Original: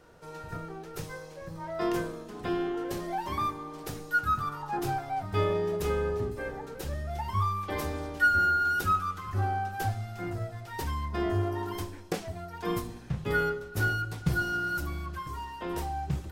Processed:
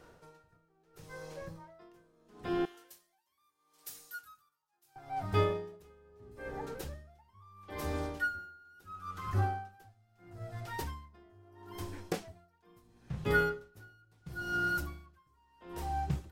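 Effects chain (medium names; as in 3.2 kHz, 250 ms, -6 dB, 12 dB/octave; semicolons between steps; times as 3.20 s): 2.65–4.96 s: pre-emphasis filter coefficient 0.97; logarithmic tremolo 0.75 Hz, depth 32 dB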